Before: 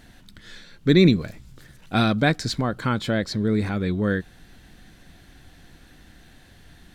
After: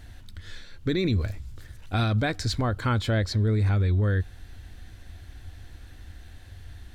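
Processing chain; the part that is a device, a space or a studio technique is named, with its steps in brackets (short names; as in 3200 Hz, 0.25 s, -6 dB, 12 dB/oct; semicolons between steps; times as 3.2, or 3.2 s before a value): car stereo with a boomy subwoofer (resonant low shelf 120 Hz +8 dB, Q 3; limiter -15.5 dBFS, peak gain reduction 8.5 dB); gain -1.5 dB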